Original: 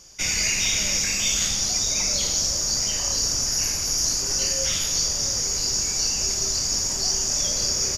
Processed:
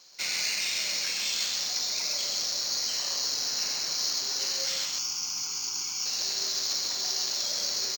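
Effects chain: sample-rate reducer 11000 Hz, jitter 0%; weighting filter A; vocal rider 0.5 s; 4.85–6.06 fixed phaser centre 2700 Hz, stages 8; echo 0.132 s -3.5 dB; gain -7.5 dB

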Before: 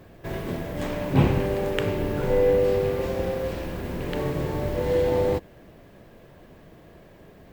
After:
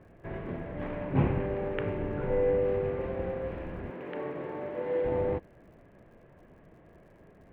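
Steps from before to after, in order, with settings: LPF 2400 Hz 24 dB/oct; crackle 91/s -53 dBFS; 3.9–5.05 HPF 270 Hz 12 dB/oct; gain -6.5 dB

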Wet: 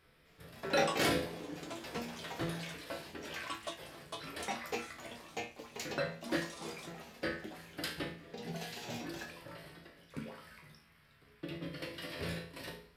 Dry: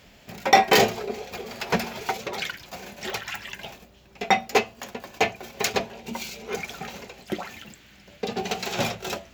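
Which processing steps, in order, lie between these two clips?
dynamic EQ 1200 Hz, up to -6 dB, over -37 dBFS, Q 1.2; resonator bank D#2 sus4, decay 0.32 s; echoes that change speed 0.183 s, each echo +6 st, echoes 2; varispeed -28%; gain -1.5 dB

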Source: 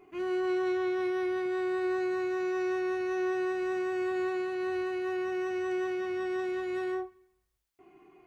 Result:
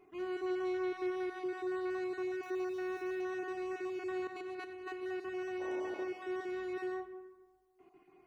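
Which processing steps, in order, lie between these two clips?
random spectral dropouts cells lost 21%; 4.27–5.03 negative-ratio compressor -36 dBFS, ratio -0.5; 5.59–6.03 band noise 260–880 Hz -43 dBFS; digital reverb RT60 1.6 s, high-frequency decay 0.35×, pre-delay 15 ms, DRR 9.5 dB; 2.43–3.22 sample gate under -51.5 dBFS; gain -6 dB

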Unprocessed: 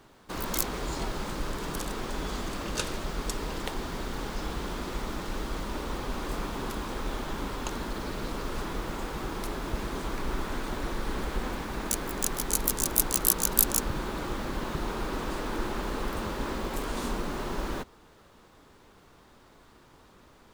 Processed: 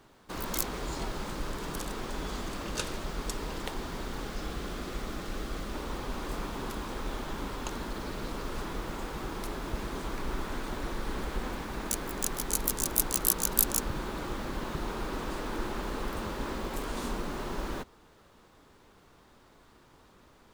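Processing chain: 4.22–5.74 notch 930 Hz, Q 6.3; gain -2.5 dB

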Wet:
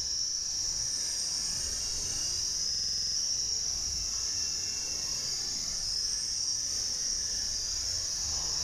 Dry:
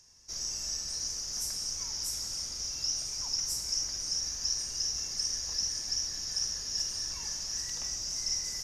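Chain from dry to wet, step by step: limiter -30.5 dBFS, peak gain reduction 11.5 dB; crackle 33/s -50 dBFS; Paulstretch 8.3×, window 0.05 s, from 4.48; buzz 100 Hz, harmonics 5, -69 dBFS; stuck buffer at 2.7, samples 2048, times 9; gain +7 dB

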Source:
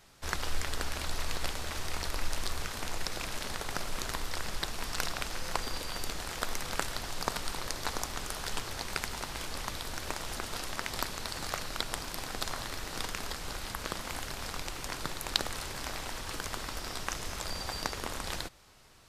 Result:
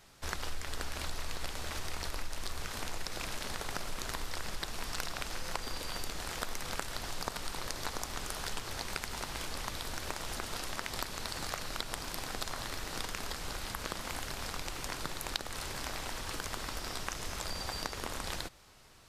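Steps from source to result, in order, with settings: compressor 3:1, threshold -33 dBFS, peak gain reduction 9.5 dB

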